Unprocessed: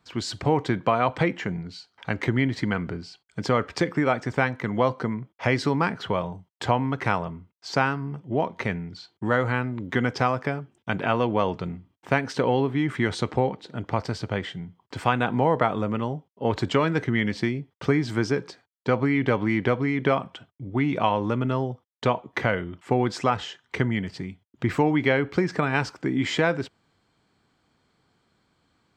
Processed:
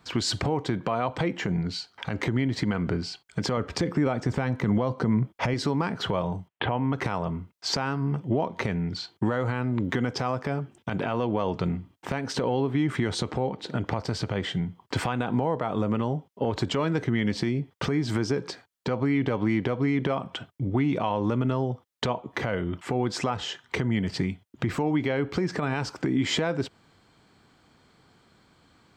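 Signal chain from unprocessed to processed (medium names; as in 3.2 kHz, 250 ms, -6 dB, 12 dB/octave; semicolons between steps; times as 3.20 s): dynamic bell 1.9 kHz, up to -5 dB, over -38 dBFS, Q 1.1; compression 5:1, threshold -29 dBFS, peak gain reduction 12 dB; 3.57–5.54 s: bass shelf 340 Hz +6.5 dB; 6.48–6.93 s: steep low-pass 3.3 kHz 48 dB/octave; peak limiter -23 dBFS, peak gain reduction 11 dB; trim +8 dB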